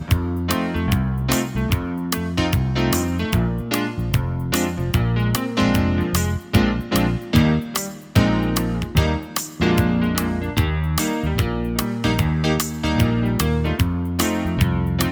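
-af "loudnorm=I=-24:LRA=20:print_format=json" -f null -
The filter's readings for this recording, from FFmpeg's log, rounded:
"input_i" : "-20.8",
"input_tp" : "-4.4",
"input_lra" : "1.4",
"input_thresh" : "-30.8",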